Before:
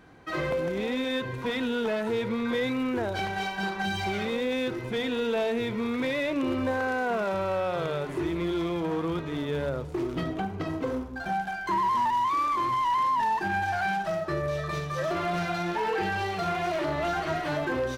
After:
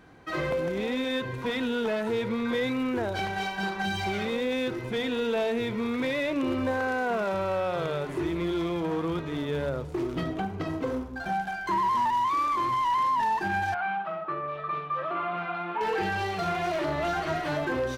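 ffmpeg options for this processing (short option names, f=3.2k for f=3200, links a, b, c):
-filter_complex "[0:a]asettb=1/sr,asplit=3[a][b][c];[a]atrim=end=13.744[d];[b]atrim=start=13.74:end=15.81,asetpts=PTS-STARTPTS,afade=t=in:d=0.004:c=qsin,afade=t=out:st=2.066:d=0.004:c=qsin,highpass=290,equalizer=f=380:t=q:w=4:g=-7,equalizer=f=600:t=q:w=4:g=-7,equalizer=f=1.2k:t=q:w=4:g=7,equalizer=f=1.8k:t=q:w=4:g=-9,lowpass=f=2.7k:w=0.5412,lowpass=f=2.7k:w=1.3066[e];[c]atrim=start=15.806[f];[d][e]acrossfade=d=0.004:c1=hsin:c2=qsin[g];[g][f]acrossfade=d=0.004:c1=qsin:c2=hsin"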